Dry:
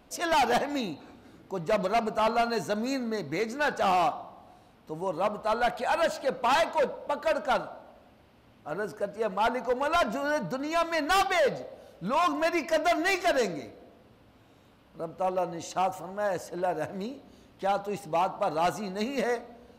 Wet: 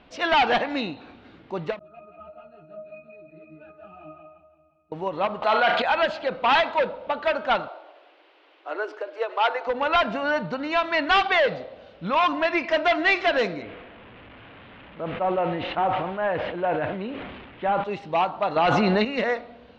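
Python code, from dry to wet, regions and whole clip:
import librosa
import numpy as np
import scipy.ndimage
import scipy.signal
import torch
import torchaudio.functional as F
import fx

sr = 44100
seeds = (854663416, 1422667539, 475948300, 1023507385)

y = fx.chain(x, sr, fx.octave_resonator(note='D#', decay_s=0.43),
    fx.echo_feedback(ms=172, feedback_pct=45, wet_db=-5.5),
    fx.ensemble(), at=(1.79, 4.92))
y = fx.chain(y, sr, fx.highpass(hz=340.0, slope=6),
    fx.room_flutter(wall_m=6.3, rt60_s=0.26),
    fx.env_flatten(amount_pct=70), at=(5.42, 5.82))
y = fx.chain(y, sr, fx.steep_highpass(hz=300.0, slope=96),
    fx.high_shelf(hz=10000.0, db=8.5), at=(7.68, 9.67))
y = fx.chain(y, sr, fx.delta_mod(bps=64000, step_db=-44.0),
    fx.lowpass(hz=3000.0, slope=24),
    fx.sustainer(db_per_s=37.0), at=(13.62, 17.84))
y = fx.chain(y, sr, fx.air_absorb(metres=79.0),
    fx.env_flatten(amount_pct=100), at=(18.56, 19.05))
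y = scipy.signal.sosfilt(scipy.signal.butter(4, 3400.0, 'lowpass', fs=sr, output='sos'), y)
y = fx.high_shelf(y, sr, hz=2000.0, db=10.5)
y = fx.end_taper(y, sr, db_per_s=250.0)
y = F.gain(torch.from_numpy(y), 2.5).numpy()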